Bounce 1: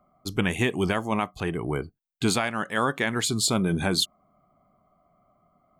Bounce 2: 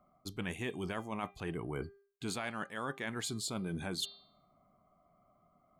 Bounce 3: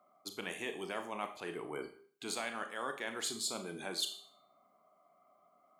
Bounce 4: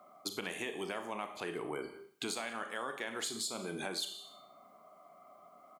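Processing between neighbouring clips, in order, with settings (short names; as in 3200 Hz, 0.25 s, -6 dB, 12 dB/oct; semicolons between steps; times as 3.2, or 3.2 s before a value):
de-hum 398.7 Hz, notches 12; reverse; compressor, threshold -31 dBFS, peak gain reduction 12 dB; reverse; gain -4.5 dB
HPF 400 Hz 12 dB/oct; Schroeder reverb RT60 0.45 s, combs from 27 ms, DRR 7 dB; dynamic EQ 1500 Hz, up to -3 dB, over -52 dBFS, Q 0.82; gain +2 dB
compressor 6:1, threshold -46 dBFS, peak gain reduction 14.5 dB; echo 0.184 s -22 dB; gain +10 dB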